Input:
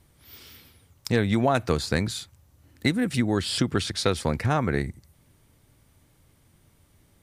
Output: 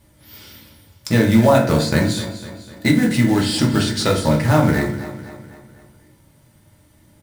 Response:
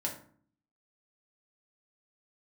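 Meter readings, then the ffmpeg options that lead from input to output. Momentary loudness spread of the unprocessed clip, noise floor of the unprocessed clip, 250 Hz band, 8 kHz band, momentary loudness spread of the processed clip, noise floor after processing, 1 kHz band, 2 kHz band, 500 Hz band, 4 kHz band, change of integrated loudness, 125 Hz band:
7 LU, −62 dBFS, +10.0 dB, +7.0 dB, 17 LU, −54 dBFS, +7.0 dB, +7.0 dB, +8.0 dB, +5.5 dB, +8.5 dB, +9.0 dB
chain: -filter_complex "[0:a]acrusher=bits=4:mode=log:mix=0:aa=0.000001,aecho=1:1:251|502|753|1004|1255:0.211|0.108|0.055|0.028|0.0143[link_01];[1:a]atrim=start_sample=2205[link_02];[link_01][link_02]afir=irnorm=-1:irlink=0,volume=4dB"

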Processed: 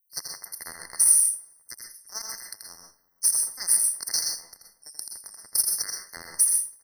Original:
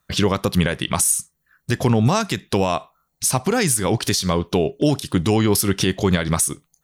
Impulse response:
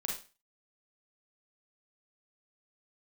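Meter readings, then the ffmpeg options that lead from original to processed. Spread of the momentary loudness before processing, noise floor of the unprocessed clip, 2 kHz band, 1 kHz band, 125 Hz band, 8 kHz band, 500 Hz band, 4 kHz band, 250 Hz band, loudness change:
5 LU, −72 dBFS, −16.5 dB, −23.5 dB, below −40 dB, +1.5 dB, below −30 dB, −8.0 dB, below −35 dB, −2.0 dB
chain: -filter_complex "[0:a]highpass=frequency=630:width=0.5412,highpass=frequency=630:width=1.3066,aderivative,acrossover=split=6900[link_01][link_02];[link_01]acrusher=bits=3:mix=0:aa=0.5[link_03];[link_03][link_02]amix=inputs=2:normalize=0,asplit=2[link_04][link_05];[link_05]adelay=332,lowpass=frequency=1400:poles=1,volume=-21dB,asplit=2[link_06][link_07];[link_07]adelay=332,lowpass=frequency=1400:poles=1,volume=0.43,asplit=2[link_08][link_09];[link_09]adelay=332,lowpass=frequency=1400:poles=1,volume=0.43[link_10];[link_04][link_06][link_08][link_10]amix=inputs=4:normalize=0,asplit=2[link_11][link_12];[1:a]atrim=start_sample=2205,adelay=83[link_13];[link_12][link_13]afir=irnorm=-1:irlink=0,volume=-4dB[link_14];[link_11][link_14]amix=inputs=2:normalize=0,afftfilt=real='re*eq(mod(floor(b*sr/1024/2100),2),0)':imag='im*eq(mod(floor(b*sr/1024/2100),2),0)':win_size=1024:overlap=0.75"

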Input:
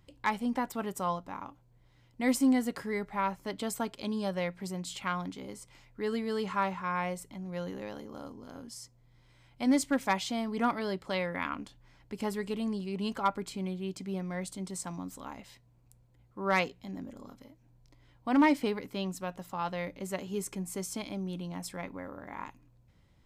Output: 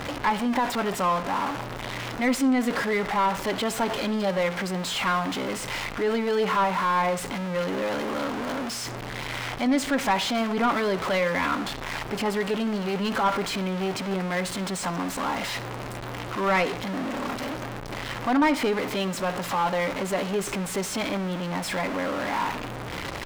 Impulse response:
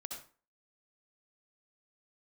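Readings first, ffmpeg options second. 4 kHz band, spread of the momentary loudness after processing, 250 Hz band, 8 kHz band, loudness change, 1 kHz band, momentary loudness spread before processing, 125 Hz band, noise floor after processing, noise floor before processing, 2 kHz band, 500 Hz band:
+11.5 dB, 9 LU, +5.0 dB, +7.0 dB, +7.0 dB, +9.0 dB, 17 LU, +7.5 dB, −35 dBFS, −64 dBFS, +10.0 dB, +9.5 dB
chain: -filter_complex "[0:a]aeval=exprs='val(0)+0.5*0.0266*sgn(val(0))':channel_layout=same,asplit=2[link_01][link_02];[link_02]highpass=frequency=720:poles=1,volume=17dB,asoftclip=type=tanh:threshold=-16dB[link_03];[link_01][link_03]amix=inputs=2:normalize=0,lowpass=frequency=2500:poles=1,volume=-6dB,asplit=2[link_04][link_05];[1:a]atrim=start_sample=2205,lowpass=4700[link_06];[link_05][link_06]afir=irnorm=-1:irlink=0,volume=-9dB[link_07];[link_04][link_07]amix=inputs=2:normalize=0"

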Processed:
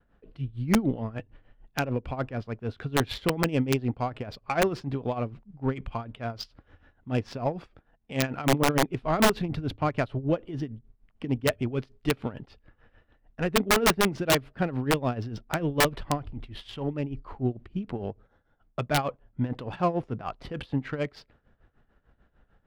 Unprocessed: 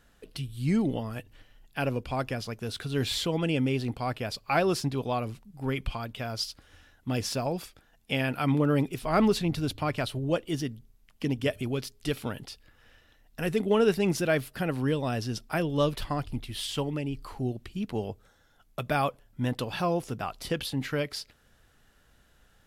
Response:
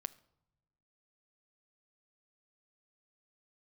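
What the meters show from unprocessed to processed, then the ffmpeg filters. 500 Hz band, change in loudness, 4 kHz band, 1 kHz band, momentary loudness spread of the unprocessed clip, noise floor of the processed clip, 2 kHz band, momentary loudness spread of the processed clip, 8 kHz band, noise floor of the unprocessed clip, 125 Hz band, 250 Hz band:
0.0 dB, +1.0 dB, +1.0 dB, +2.5 dB, 13 LU, −68 dBFS, +3.0 dB, 13 LU, +4.5 dB, −63 dBFS, +0.5 dB, 0.0 dB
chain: -af "agate=range=-33dB:threshold=-59dB:ratio=3:detection=peak,highshelf=frequency=3200:gain=-4.5,tremolo=f=6.7:d=0.79,adynamicsmooth=sensitivity=3.5:basefreq=1900,aeval=exprs='(mod(8.91*val(0)+1,2)-1)/8.91':channel_layout=same,volume=5dB"

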